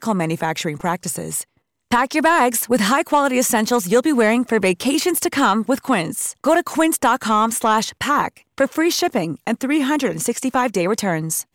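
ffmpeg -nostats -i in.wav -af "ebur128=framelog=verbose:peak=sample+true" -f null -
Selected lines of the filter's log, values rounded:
Integrated loudness:
  I:         -18.6 LUFS
  Threshold: -28.7 LUFS
Loudness range:
  LRA:         2.9 LU
  Threshold: -38.2 LUFS
  LRA low:   -19.8 LUFS
  LRA high:  -16.8 LUFS
Sample peak:
  Peak:       -6.3 dBFS
True peak:
  Peak:       -6.3 dBFS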